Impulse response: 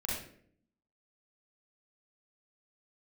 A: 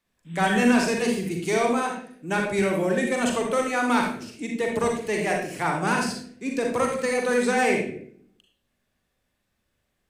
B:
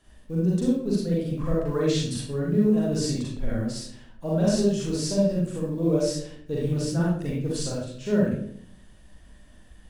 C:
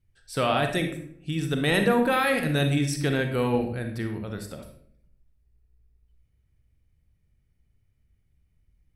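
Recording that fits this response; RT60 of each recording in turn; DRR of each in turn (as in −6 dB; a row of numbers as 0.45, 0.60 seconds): B; 0.60, 0.60, 0.60 seconds; 0.0, −5.5, 5.0 decibels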